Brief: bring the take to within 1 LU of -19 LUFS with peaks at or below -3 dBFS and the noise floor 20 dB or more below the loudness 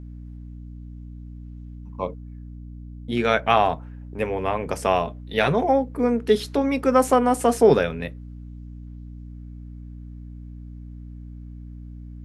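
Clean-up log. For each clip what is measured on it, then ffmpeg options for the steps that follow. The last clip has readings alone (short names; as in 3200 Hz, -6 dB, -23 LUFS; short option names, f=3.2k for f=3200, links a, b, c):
hum 60 Hz; harmonics up to 300 Hz; hum level -36 dBFS; loudness -22.0 LUFS; peak -3.5 dBFS; loudness target -19.0 LUFS
-> -af "bandreject=f=60:t=h:w=6,bandreject=f=120:t=h:w=6,bandreject=f=180:t=h:w=6,bandreject=f=240:t=h:w=6,bandreject=f=300:t=h:w=6"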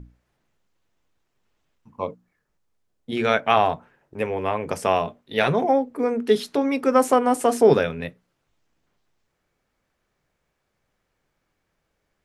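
hum none; loudness -21.5 LUFS; peak -3.5 dBFS; loudness target -19.0 LUFS
-> -af "volume=2.5dB,alimiter=limit=-3dB:level=0:latency=1"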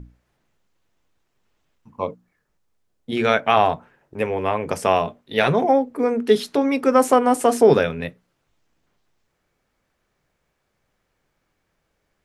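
loudness -19.5 LUFS; peak -3.0 dBFS; noise floor -73 dBFS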